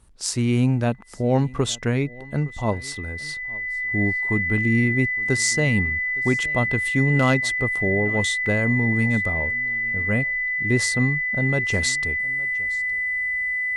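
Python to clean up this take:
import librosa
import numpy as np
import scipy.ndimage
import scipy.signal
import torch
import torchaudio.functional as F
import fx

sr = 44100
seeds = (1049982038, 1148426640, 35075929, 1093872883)

y = fx.fix_declip(x, sr, threshold_db=-8.5)
y = fx.notch(y, sr, hz=2000.0, q=30.0)
y = fx.fix_interpolate(y, sr, at_s=(8.46,), length_ms=2.3)
y = fx.fix_echo_inverse(y, sr, delay_ms=864, level_db=-22.5)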